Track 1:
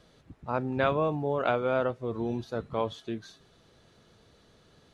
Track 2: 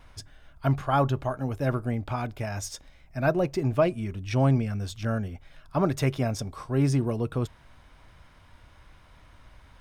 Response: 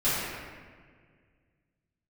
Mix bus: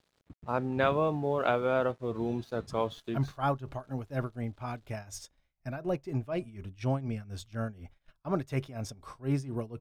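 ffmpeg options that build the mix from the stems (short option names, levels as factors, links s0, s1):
-filter_complex "[0:a]aeval=exprs='sgn(val(0))*max(abs(val(0))-0.0015,0)':c=same,volume=0.944[s0];[1:a]agate=range=0.178:threshold=0.00501:ratio=16:detection=peak,tremolo=f=4.1:d=0.84,adelay=2500,volume=0.562[s1];[s0][s1]amix=inputs=2:normalize=0"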